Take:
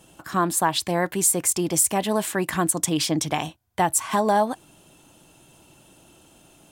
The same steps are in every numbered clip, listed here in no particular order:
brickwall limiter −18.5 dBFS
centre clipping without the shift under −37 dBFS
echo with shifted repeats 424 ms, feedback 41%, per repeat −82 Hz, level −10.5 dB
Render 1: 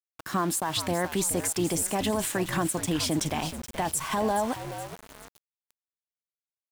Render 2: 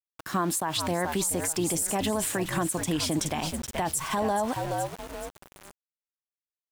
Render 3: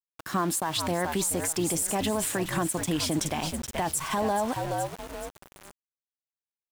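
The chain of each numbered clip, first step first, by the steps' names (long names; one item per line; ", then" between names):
brickwall limiter, then echo with shifted repeats, then centre clipping without the shift
echo with shifted repeats, then centre clipping without the shift, then brickwall limiter
echo with shifted repeats, then brickwall limiter, then centre clipping without the shift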